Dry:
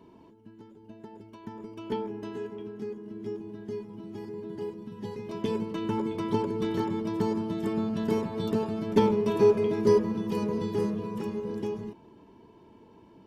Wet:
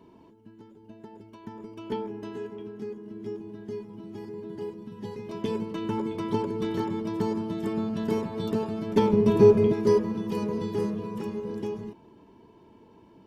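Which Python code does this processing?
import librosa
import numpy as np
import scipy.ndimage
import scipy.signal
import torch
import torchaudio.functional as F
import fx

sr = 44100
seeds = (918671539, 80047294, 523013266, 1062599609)

y = fx.low_shelf(x, sr, hz=290.0, db=12.0, at=(9.13, 9.73))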